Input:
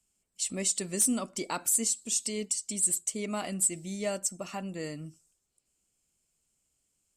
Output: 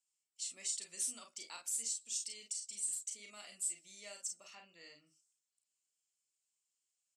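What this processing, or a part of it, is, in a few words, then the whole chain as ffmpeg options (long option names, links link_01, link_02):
piezo pickup straight into a mixer: -filter_complex "[0:a]asettb=1/sr,asplit=3[link_01][link_02][link_03];[link_01]atrim=end=4.504[link_04];[link_02]atrim=start=4.5:end=5.07,asetpts=PTS-STARTPTS,afade=type=in:duration=0.004:curve=qsin,afade=type=out:start_time=0.566:duration=0.004:curve=qsin,lowpass=frequency=5500:width=0.5412,lowpass=frequency=5500:width=1.3066[link_05];[link_03]atrim=start=5.066[link_06];[link_04][link_05]acrossfade=duration=0.004:curve1=hsin:curve2=qsin[link_07];[link_07][link_06]acrossfade=duration=0.004:curve1=qsin:curve2=hsin,lowpass=5100,aderivative,asettb=1/sr,asplit=3[link_08][link_09][link_10];[link_08]atrim=end=1.754[link_11];[link_09]atrim=start=1.75:end=3.5,asetpts=PTS-STARTPTS,afade=type=in:duration=0.004:curve=qsin,afade=type=out:start_time=1.746:duration=0.004:curve=qsin,equalizer=frequency=890:width_type=o:width=0.58:gain=-6[link_12];[link_10]atrim=start=3.496[link_13];[link_11][link_12]acrossfade=duration=0.004:curve1=hsin:curve2=qsin[link_14];[link_14][link_13]acrossfade=duration=0.004:curve1=qsin:curve2=hsin,aecho=1:1:35|48:0.501|0.447,volume=-3dB"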